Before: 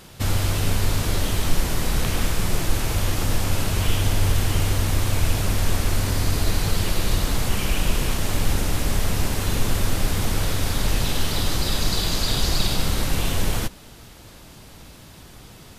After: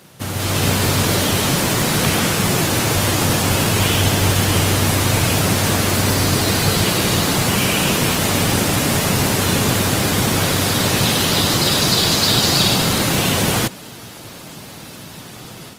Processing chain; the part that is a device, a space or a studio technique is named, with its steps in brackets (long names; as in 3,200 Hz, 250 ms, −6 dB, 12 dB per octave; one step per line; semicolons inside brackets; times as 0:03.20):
video call (high-pass filter 110 Hz 24 dB per octave; automatic gain control gain up to 9 dB; level +1.5 dB; Opus 20 kbit/s 48,000 Hz)